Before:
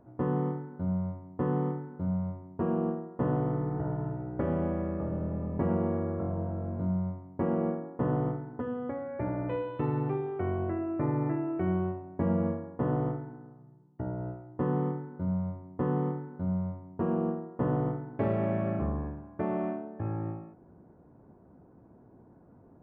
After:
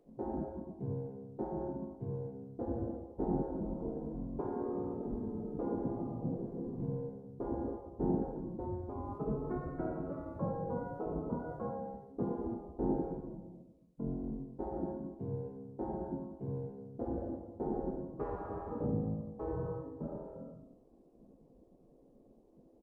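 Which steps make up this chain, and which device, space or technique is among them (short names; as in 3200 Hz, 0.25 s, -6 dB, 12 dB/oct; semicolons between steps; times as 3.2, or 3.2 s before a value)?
monster voice (pitch shift -5.5 st; formant shift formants -5 st; low shelf 120 Hz +4 dB; echo 79 ms -12.5 dB; reverb RT60 0.85 s, pre-delay 4 ms, DRR 2 dB); spectral gate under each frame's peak -10 dB weak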